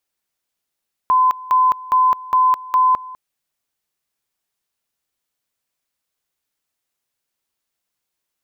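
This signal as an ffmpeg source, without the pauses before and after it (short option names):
-f lavfi -i "aevalsrc='pow(10,(-10.5-20*gte(mod(t,0.41),0.21))/20)*sin(2*PI*1020*t)':d=2.05:s=44100"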